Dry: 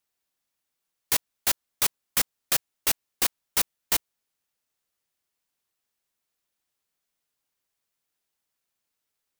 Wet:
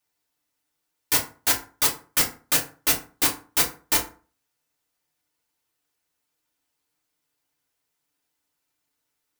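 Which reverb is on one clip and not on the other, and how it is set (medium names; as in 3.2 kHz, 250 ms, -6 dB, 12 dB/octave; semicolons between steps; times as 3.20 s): FDN reverb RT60 0.38 s, low-frequency decay 1.1×, high-frequency decay 0.6×, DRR -3 dB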